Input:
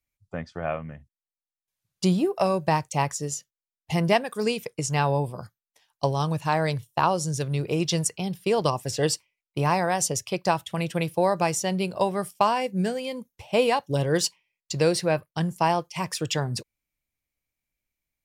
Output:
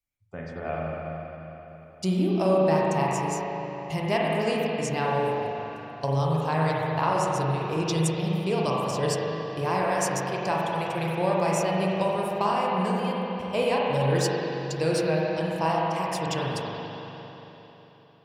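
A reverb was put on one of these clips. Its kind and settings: spring tank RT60 3.7 s, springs 37/44 ms, chirp 60 ms, DRR -4.5 dB; gain -6 dB

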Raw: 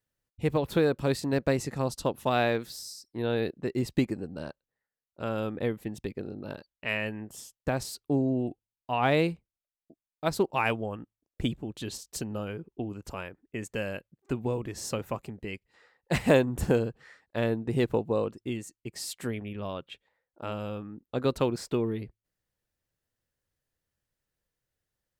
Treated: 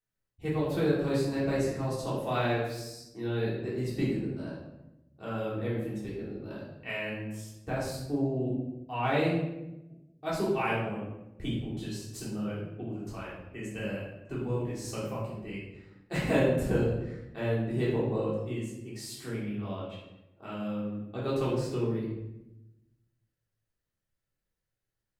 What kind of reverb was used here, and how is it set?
shoebox room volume 350 m³, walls mixed, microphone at 3.5 m; gain -12.5 dB

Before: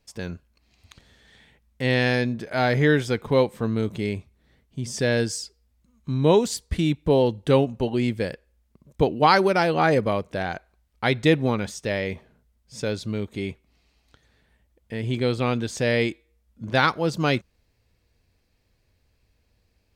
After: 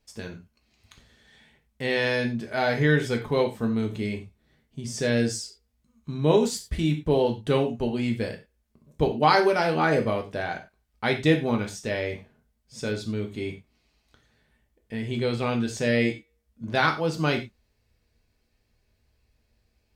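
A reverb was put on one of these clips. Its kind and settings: non-linear reverb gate 0.13 s falling, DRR 2.5 dB; gain -4 dB

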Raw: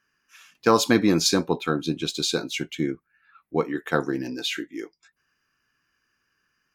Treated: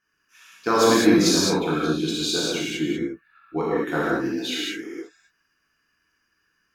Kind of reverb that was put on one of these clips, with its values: non-linear reverb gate 0.24 s flat, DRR -7.5 dB; gain -6 dB

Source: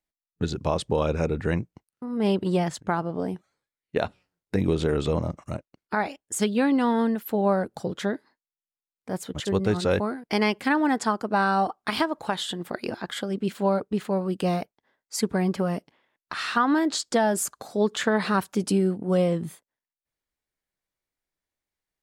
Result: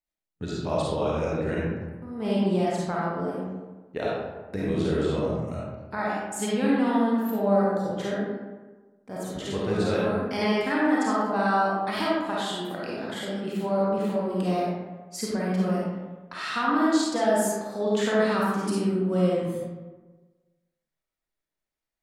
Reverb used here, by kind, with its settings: digital reverb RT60 1.3 s, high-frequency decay 0.5×, pre-delay 10 ms, DRR -6.5 dB; gain -8 dB

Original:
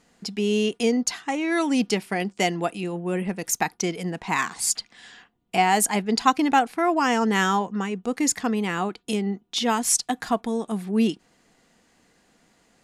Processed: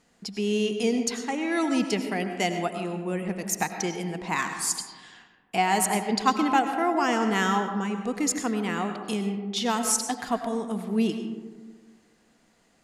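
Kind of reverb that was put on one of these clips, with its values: digital reverb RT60 1.5 s, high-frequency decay 0.35×, pre-delay 60 ms, DRR 6.5 dB; gain -3.5 dB

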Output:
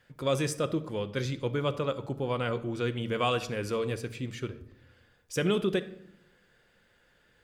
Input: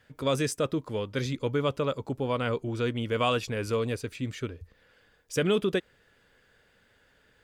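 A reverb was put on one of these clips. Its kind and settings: shoebox room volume 2100 m³, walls furnished, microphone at 0.88 m; gain -2 dB

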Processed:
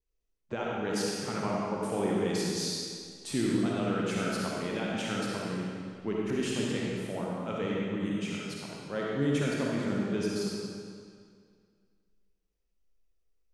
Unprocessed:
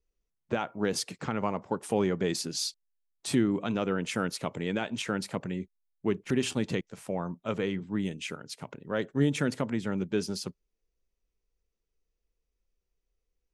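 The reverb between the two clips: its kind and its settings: digital reverb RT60 2.1 s, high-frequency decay 0.9×, pre-delay 15 ms, DRR -4.5 dB; gain -6 dB

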